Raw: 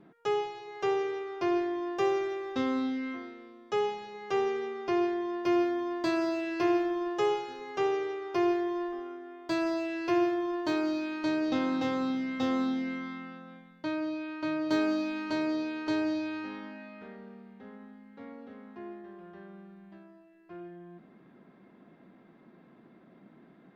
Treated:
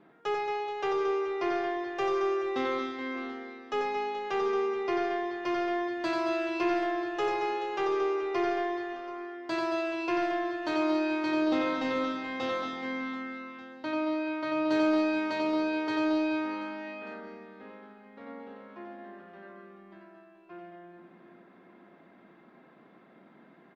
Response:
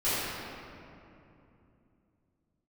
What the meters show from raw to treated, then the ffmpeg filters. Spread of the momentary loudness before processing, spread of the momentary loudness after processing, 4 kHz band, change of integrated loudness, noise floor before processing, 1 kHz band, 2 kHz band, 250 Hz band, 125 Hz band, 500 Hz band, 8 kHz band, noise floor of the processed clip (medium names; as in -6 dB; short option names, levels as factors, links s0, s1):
19 LU, 18 LU, +1.5 dB, +0.5 dB, -58 dBFS, +3.5 dB, +3.5 dB, -1.0 dB, -5.0 dB, +1.0 dB, no reading, -57 dBFS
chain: -filter_complex "[0:a]asplit=2[s0][s1];[s1]highpass=f=720:p=1,volume=3.98,asoftclip=type=tanh:threshold=0.15[s2];[s0][s2]amix=inputs=2:normalize=0,lowpass=f=3000:p=1,volume=0.501,aecho=1:1:90|225|427.5|731.2|1187:0.631|0.398|0.251|0.158|0.1,asplit=2[s3][s4];[1:a]atrim=start_sample=2205[s5];[s4][s5]afir=irnorm=-1:irlink=0,volume=0.0266[s6];[s3][s6]amix=inputs=2:normalize=0,volume=0.668"